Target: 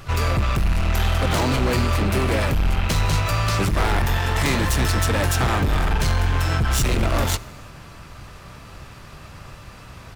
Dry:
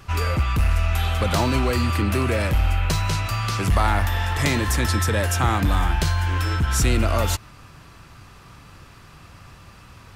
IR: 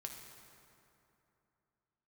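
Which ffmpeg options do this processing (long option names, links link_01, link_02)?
-filter_complex "[0:a]asoftclip=type=hard:threshold=-22dB,asplit=3[link_01][link_02][link_03];[link_02]asetrate=22050,aresample=44100,atempo=2,volume=-5dB[link_04];[link_03]asetrate=66075,aresample=44100,atempo=0.66742,volume=-13dB[link_05];[link_01][link_04][link_05]amix=inputs=3:normalize=0,asplit=2[link_06][link_07];[1:a]atrim=start_sample=2205,afade=type=out:start_time=0.41:duration=0.01,atrim=end_sample=18522[link_08];[link_07][link_08]afir=irnorm=-1:irlink=0,volume=-9dB[link_09];[link_06][link_09]amix=inputs=2:normalize=0,volume=2dB"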